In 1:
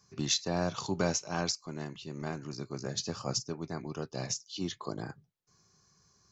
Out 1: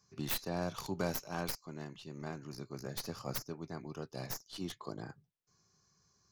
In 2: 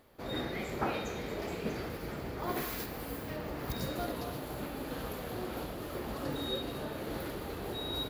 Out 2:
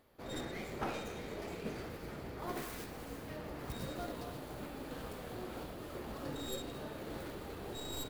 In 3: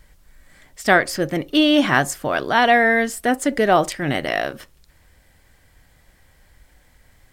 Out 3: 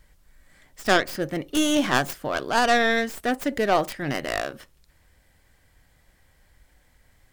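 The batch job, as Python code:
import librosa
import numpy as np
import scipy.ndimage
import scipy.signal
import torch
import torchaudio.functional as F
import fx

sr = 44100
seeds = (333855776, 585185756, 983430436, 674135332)

y = fx.tracing_dist(x, sr, depth_ms=0.21)
y = y * 10.0 ** (-5.5 / 20.0)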